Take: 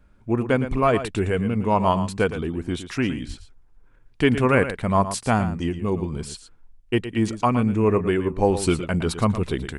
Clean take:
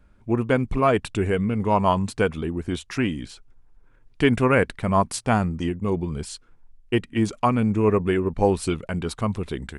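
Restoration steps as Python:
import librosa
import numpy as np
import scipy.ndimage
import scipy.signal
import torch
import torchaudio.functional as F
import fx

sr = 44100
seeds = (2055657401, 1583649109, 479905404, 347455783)

y = fx.highpass(x, sr, hz=140.0, slope=24, at=(3.27, 3.39), fade=0.02)
y = fx.fix_echo_inverse(y, sr, delay_ms=114, level_db=-11.5)
y = fx.gain(y, sr, db=fx.steps((0.0, 0.0), (8.57, -4.0)))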